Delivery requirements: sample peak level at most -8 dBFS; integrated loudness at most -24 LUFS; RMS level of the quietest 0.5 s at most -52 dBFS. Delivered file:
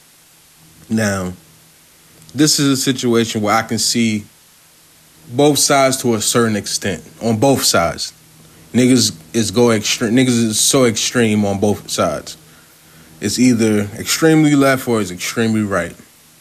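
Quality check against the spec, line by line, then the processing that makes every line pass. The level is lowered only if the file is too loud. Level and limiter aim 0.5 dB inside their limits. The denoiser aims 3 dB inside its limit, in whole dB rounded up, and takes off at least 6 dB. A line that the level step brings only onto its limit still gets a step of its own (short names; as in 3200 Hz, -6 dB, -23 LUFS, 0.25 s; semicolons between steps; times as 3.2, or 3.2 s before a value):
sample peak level -2.5 dBFS: fail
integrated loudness -15.0 LUFS: fail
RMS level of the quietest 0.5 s -48 dBFS: fail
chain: gain -9.5 dB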